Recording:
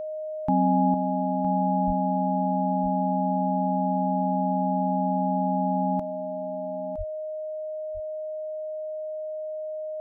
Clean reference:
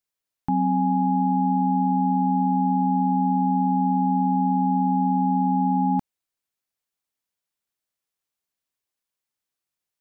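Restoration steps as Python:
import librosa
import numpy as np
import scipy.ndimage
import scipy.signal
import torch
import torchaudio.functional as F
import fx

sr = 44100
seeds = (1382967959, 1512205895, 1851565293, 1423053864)

y = fx.notch(x, sr, hz=620.0, q=30.0)
y = fx.fix_deplosive(y, sr, at_s=(1.86, 6.97))
y = fx.fix_echo_inverse(y, sr, delay_ms=962, level_db=-11.0)
y = fx.fix_level(y, sr, at_s=0.94, step_db=5.5)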